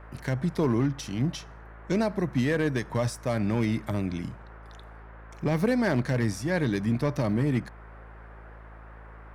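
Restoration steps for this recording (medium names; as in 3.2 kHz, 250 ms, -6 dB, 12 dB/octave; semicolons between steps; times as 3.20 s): clip repair -17.5 dBFS; de-hum 54.6 Hz, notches 8; noise print and reduce 27 dB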